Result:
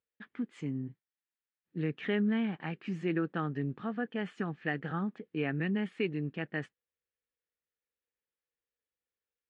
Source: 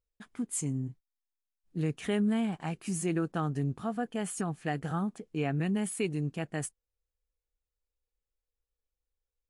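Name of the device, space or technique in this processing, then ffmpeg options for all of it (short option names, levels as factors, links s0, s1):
kitchen radio: -af "highpass=170,equalizer=f=700:t=q:w=4:g=-7,equalizer=f=1000:t=q:w=4:g=-4,equalizer=f=1800:t=q:w=4:g=6,lowpass=f=3400:w=0.5412,lowpass=f=3400:w=1.3066"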